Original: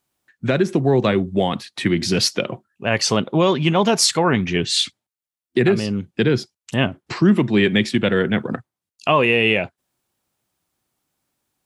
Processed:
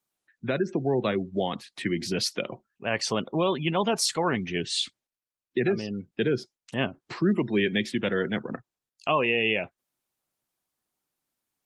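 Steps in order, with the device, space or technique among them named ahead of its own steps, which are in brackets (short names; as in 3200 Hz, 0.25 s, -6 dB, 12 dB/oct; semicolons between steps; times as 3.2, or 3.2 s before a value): 5.84–7.62 dynamic EQ 410 Hz, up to +3 dB, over -28 dBFS, Q 3.6; noise-suppressed video call (HPF 170 Hz 6 dB/oct; spectral gate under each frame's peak -30 dB strong; gain -7.5 dB; Opus 24 kbps 48000 Hz)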